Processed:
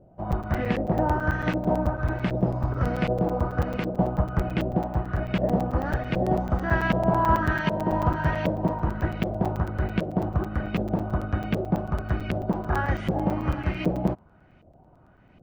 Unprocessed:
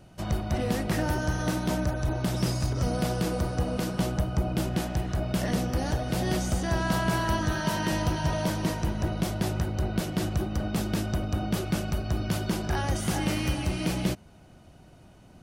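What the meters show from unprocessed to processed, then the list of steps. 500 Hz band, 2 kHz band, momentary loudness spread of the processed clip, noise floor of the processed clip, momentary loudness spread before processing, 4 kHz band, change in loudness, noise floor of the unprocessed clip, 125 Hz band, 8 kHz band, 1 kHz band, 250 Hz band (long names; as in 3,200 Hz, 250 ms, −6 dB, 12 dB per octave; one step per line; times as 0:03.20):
+4.5 dB, +3.0 dB, 5 LU, −56 dBFS, 3 LU, −7.5 dB, +2.5 dB, −53 dBFS, +1.5 dB, below −15 dB, +5.5 dB, +2.0 dB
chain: auto-filter low-pass saw up 1.3 Hz 530–2,500 Hz
regular buffer underruns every 0.11 s, samples 256, zero, from 0:00.32
expander for the loud parts 1.5 to 1, over −36 dBFS
level +4 dB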